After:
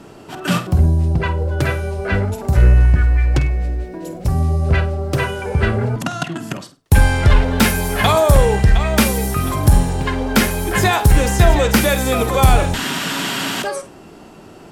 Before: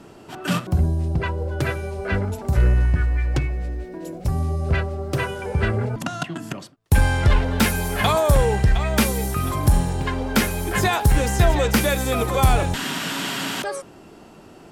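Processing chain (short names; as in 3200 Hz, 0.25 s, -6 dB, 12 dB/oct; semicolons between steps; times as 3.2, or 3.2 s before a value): flutter echo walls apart 8.6 m, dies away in 0.25 s; gain +4.5 dB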